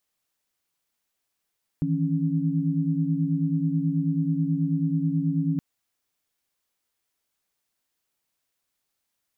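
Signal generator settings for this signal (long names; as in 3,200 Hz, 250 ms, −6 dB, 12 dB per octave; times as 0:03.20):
held notes D#3/E3/C#4 sine, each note −26 dBFS 3.77 s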